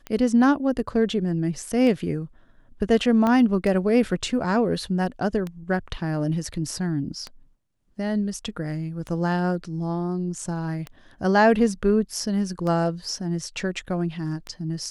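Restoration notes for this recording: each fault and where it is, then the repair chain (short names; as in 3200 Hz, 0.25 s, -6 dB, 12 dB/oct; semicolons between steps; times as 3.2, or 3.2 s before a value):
tick 33 1/3 rpm -18 dBFS
3.27 pop -12 dBFS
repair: de-click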